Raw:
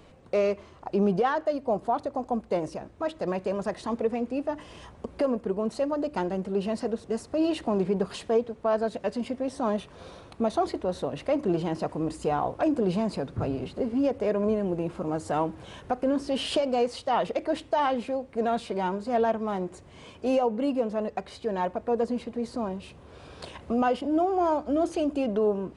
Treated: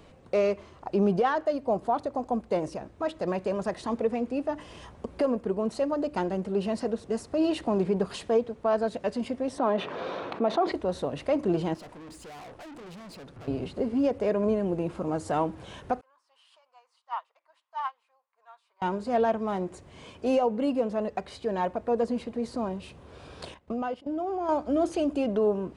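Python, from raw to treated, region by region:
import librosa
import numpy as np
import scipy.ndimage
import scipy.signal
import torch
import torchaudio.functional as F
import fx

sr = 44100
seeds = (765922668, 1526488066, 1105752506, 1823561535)

y = fx.chain(x, sr, fx.bandpass_edges(low_hz=280.0, high_hz=2700.0),
    fx.env_flatten(amount_pct=50), at=(9.58, 10.72))
y = fx.chain(y, sr, fx.low_shelf(hz=470.0, db=-4.5),
    fx.tube_stage(drive_db=43.0, bias=0.45), at=(11.74, 13.48))
y = fx.chain(y, sr, fx.ladder_highpass(hz=940.0, resonance_pct=65),
    fx.upward_expand(threshold_db=-41.0, expansion=2.5), at=(16.01, 18.82))
y = fx.chain(y, sr, fx.high_shelf(hz=9700.0, db=-10.0),
    fx.level_steps(step_db=15),
    fx.upward_expand(threshold_db=-45.0, expansion=1.5), at=(23.54, 24.49))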